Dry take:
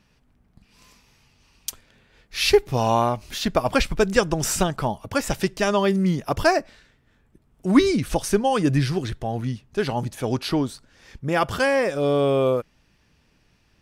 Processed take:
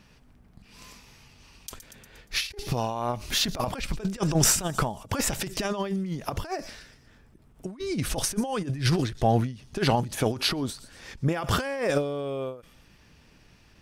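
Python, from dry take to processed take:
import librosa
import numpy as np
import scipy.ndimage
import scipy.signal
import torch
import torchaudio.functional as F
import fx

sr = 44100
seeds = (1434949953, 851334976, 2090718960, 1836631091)

y = fx.echo_wet_highpass(x, sr, ms=118, feedback_pct=44, hz=4900.0, wet_db=-15.0)
y = fx.over_compress(y, sr, threshold_db=-25.0, ratio=-0.5)
y = fx.end_taper(y, sr, db_per_s=140.0)
y = y * librosa.db_to_amplitude(1.0)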